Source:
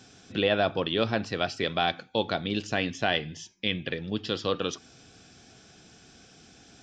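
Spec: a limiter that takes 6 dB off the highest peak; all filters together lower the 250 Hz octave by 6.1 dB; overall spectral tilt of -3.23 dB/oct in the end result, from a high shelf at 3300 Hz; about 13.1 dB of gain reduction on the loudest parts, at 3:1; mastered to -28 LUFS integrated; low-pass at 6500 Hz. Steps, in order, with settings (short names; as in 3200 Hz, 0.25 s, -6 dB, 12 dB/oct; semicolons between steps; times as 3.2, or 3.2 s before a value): LPF 6500 Hz; bell 250 Hz -8.5 dB; high shelf 3300 Hz +4.5 dB; compressor 3:1, threshold -39 dBFS; gain +15 dB; limiter -11.5 dBFS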